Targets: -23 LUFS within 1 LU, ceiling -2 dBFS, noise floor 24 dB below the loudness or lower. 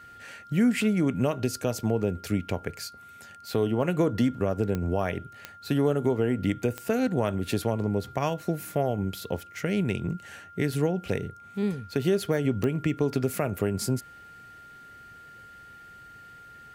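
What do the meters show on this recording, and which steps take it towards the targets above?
clicks found 4; steady tone 1.4 kHz; tone level -46 dBFS; loudness -28.0 LUFS; peak level -13.0 dBFS; loudness target -23.0 LUFS
-> de-click; band-stop 1.4 kHz, Q 30; trim +5 dB

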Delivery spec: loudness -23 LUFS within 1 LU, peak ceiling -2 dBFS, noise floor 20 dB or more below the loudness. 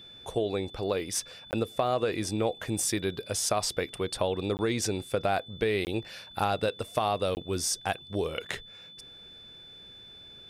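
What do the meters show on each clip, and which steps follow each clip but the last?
dropouts 4; longest dropout 19 ms; steady tone 3.5 kHz; tone level -47 dBFS; loudness -30.5 LUFS; peak level -13.0 dBFS; loudness target -23.0 LUFS
-> interpolate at 1.51/4.57/5.85/7.35 s, 19 ms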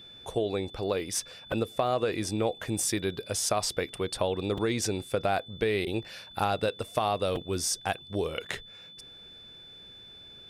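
dropouts 0; steady tone 3.5 kHz; tone level -47 dBFS
-> band-stop 3.5 kHz, Q 30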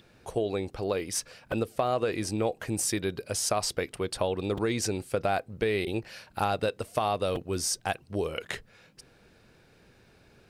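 steady tone not found; loudness -30.5 LUFS; peak level -13.5 dBFS; loudness target -23.0 LUFS
-> trim +7.5 dB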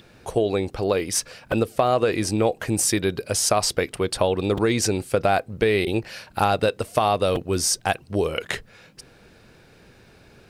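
loudness -23.0 LUFS; peak level -6.0 dBFS; noise floor -53 dBFS

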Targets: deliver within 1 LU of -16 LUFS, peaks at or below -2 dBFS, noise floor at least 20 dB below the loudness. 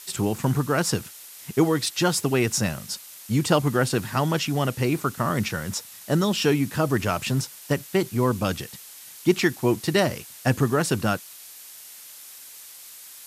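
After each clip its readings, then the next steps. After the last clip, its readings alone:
noise floor -44 dBFS; noise floor target -45 dBFS; loudness -24.5 LUFS; peak level -6.0 dBFS; loudness target -16.0 LUFS
-> noise print and reduce 6 dB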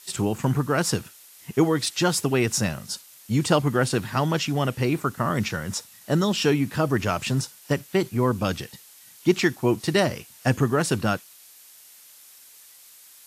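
noise floor -50 dBFS; loudness -24.5 LUFS; peak level -6.5 dBFS; loudness target -16.0 LUFS
-> trim +8.5 dB; peak limiter -2 dBFS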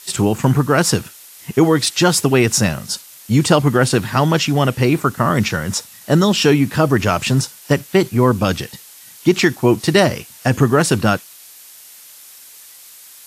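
loudness -16.5 LUFS; peak level -2.0 dBFS; noise floor -42 dBFS

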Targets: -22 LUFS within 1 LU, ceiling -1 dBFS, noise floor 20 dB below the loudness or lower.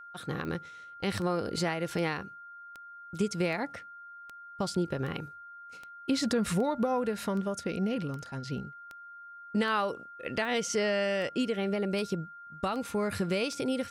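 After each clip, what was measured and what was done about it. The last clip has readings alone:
clicks found 18; steady tone 1.4 kHz; tone level -45 dBFS; loudness -32.0 LUFS; peak level -17.0 dBFS; loudness target -22.0 LUFS
-> de-click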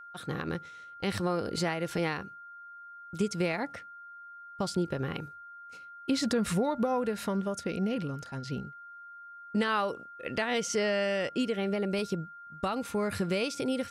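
clicks found 0; steady tone 1.4 kHz; tone level -45 dBFS
-> band-stop 1.4 kHz, Q 30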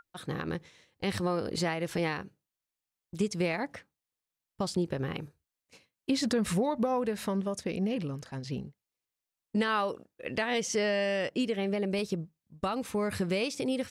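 steady tone not found; loudness -32.0 LUFS; peak level -17.5 dBFS; loudness target -22.0 LUFS
-> trim +10 dB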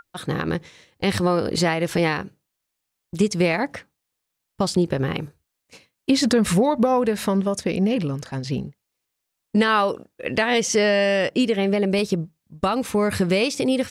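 loudness -22.0 LUFS; peak level -7.5 dBFS; noise floor -80 dBFS

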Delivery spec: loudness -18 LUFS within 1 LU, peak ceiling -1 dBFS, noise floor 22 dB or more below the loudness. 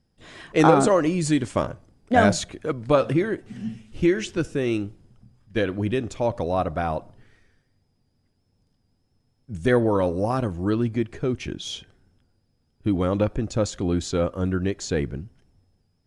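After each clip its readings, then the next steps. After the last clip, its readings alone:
loudness -24.0 LUFS; peak level -4.5 dBFS; loudness target -18.0 LUFS
-> trim +6 dB; peak limiter -1 dBFS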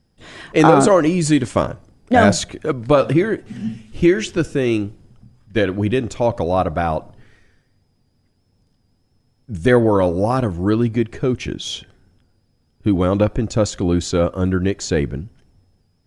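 loudness -18.5 LUFS; peak level -1.0 dBFS; noise floor -63 dBFS

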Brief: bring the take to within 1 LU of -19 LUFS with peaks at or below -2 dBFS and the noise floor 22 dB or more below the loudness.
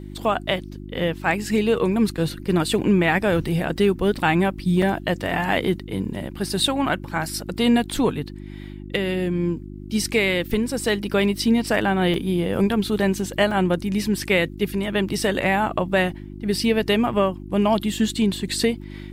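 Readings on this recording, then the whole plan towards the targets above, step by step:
dropouts 3; longest dropout 3.2 ms; hum 50 Hz; highest harmonic 350 Hz; hum level -34 dBFS; loudness -22.0 LUFS; peak level -7.0 dBFS; loudness target -19.0 LUFS
-> interpolate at 4.82/12.14/13.51 s, 3.2 ms; de-hum 50 Hz, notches 7; trim +3 dB

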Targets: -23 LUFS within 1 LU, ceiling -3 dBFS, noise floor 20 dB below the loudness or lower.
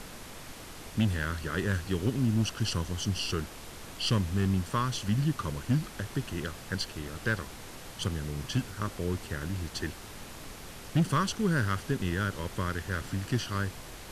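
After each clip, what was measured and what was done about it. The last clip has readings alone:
clipped samples 0.4%; clipping level -19.0 dBFS; noise floor -45 dBFS; noise floor target -52 dBFS; loudness -31.5 LUFS; peak level -19.0 dBFS; loudness target -23.0 LUFS
-> clip repair -19 dBFS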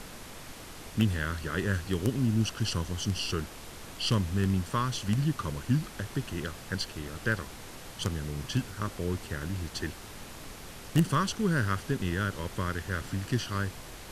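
clipped samples 0.0%; noise floor -45 dBFS; noise floor target -52 dBFS
-> noise print and reduce 7 dB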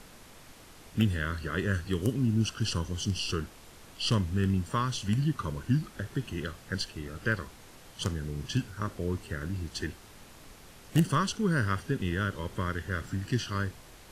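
noise floor -52 dBFS; loudness -31.5 LUFS; peak level -10.5 dBFS; loudness target -23.0 LUFS
-> trim +8.5 dB; peak limiter -3 dBFS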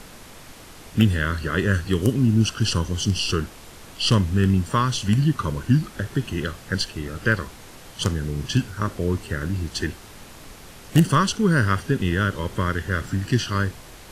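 loudness -23.0 LUFS; peak level -3.0 dBFS; noise floor -44 dBFS

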